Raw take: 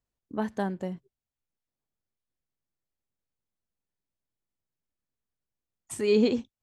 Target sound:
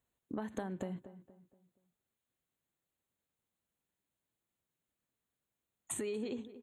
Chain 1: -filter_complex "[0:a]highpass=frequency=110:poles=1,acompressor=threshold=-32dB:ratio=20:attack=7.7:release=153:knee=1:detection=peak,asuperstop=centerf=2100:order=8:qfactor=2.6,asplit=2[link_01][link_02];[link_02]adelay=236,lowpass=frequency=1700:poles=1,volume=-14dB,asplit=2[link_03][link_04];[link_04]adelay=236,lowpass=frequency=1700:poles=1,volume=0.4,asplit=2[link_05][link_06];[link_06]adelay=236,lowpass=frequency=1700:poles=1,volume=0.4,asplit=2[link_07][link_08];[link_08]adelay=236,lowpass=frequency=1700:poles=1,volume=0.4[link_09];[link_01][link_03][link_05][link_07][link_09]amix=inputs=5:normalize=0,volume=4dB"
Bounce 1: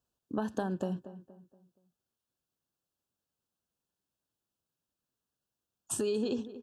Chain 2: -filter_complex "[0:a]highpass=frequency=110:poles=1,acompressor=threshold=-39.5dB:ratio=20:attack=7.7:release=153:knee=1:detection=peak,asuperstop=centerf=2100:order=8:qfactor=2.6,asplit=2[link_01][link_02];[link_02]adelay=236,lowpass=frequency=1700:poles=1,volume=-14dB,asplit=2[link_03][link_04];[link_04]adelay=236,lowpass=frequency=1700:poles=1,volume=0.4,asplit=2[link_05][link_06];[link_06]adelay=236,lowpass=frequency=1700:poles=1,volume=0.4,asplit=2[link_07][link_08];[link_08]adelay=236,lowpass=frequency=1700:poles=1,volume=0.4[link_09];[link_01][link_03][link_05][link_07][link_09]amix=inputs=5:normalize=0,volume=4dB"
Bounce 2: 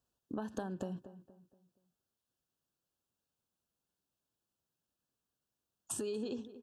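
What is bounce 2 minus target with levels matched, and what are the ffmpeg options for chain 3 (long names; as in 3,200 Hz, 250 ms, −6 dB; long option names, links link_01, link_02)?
2,000 Hz band −3.0 dB
-filter_complex "[0:a]highpass=frequency=110:poles=1,acompressor=threshold=-39.5dB:ratio=20:attack=7.7:release=153:knee=1:detection=peak,asuperstop=centerf=5200:order=8:qfactor=2.6,asplit=2[link_01][link_02];[link_02]adelay=236,lowpass=frequency=1700:poles=1,volume=-14dB,asplit=2[link_03][link_04];[link_04]adelay=236,lowpass=frequency=1700:poles=1,volume=0.4,asplit=2[link_05][link_06];[link_06]adelay=236,lowpass=frequency=1700:poles=1,volume=0.4,asplit=2[link_07][link_08];[link_08]adelay=236,lowpass=frequency=1700:poles=1,volume=0.4[link_09];[link_01][link_03][link_05][link_07][link_09]amix=inputs=5:normalize=0,volume=4dB"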